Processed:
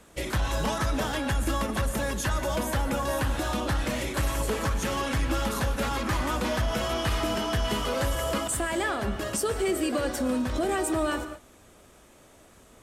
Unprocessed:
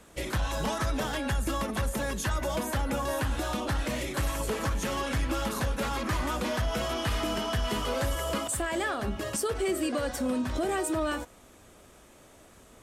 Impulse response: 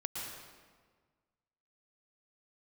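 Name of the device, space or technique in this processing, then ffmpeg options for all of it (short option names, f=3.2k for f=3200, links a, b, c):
keyed gated reverb: -filter_complex "[0:a]asplit=3[a][b][c];[1:a]atrim=start_sample=2205[d];[b][d]afir=irnorm=-1:irlink=0[e];[c]apad=whole_len=565534[f];[e][f]sidechaingate=range=-33dB:threshold=-49dB:ratio=16:detection=peak,volume=-9dB[g];[a][g]amix=inputs=2:normalize=0"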